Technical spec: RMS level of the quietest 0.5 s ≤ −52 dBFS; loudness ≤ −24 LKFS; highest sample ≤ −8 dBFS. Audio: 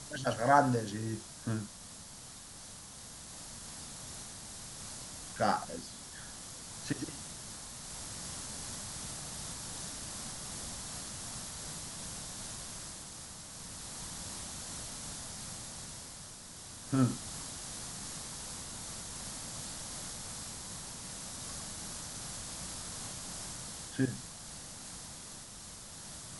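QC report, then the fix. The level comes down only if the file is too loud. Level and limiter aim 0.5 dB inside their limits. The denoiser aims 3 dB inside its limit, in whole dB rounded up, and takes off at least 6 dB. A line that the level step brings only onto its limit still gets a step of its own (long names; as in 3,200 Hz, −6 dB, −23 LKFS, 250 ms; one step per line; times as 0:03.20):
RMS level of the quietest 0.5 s −50 dBFS: out of spec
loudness −39.0 LKFS: in spec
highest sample −10.5 dBFS: in spec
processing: broadband denoise 6 dB, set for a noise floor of −50 dBFS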